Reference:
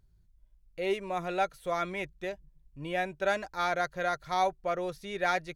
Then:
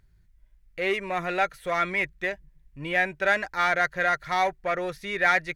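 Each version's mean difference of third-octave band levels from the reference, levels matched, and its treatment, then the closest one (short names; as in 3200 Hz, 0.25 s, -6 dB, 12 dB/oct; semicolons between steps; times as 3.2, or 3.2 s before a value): 2.5 dB: in parallel at -5.5 dB: overloaded stage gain 32.5 dB; on the sum: bell 1900 Hz +12 dB 0.87 oct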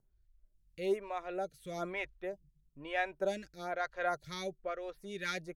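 4.5 dB: rotary speaker horn 0.9 Hz; photocell phaser 1.1 Hz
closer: first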